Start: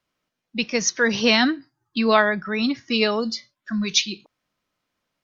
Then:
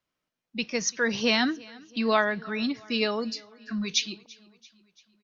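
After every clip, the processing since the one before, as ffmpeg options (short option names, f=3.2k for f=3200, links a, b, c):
-af "aecho=1:1:338|676|1014|1352:0.0668|0.0381|0.0217|0.0124,volume=-6dB"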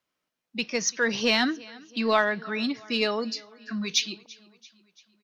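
-filter_complex "[0:a]lowshelf=f=120:g=-11,asplit=2[a][b];[b]asoftclip=type=tanh:threshold=-24dB,volume=-10.5dB[c];[a][c]amix=inputs=2:normalize=0"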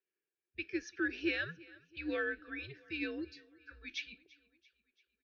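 -filter_complex "[0:a]asplit=3[a][b][c];[a]bandpass=f=530:t=q:w=8,volume=0dB[d];[b]bandpass=f=1.84k:t=q:w=8,volume=-6dB[e];[c]bandpass=f=2.48k:t=q:w=8,volume=-9dB[f];[d][e][f]amix=inputs=3:normalize=0,afreqshift=-150,lowshelf=f=180:g=-6.5"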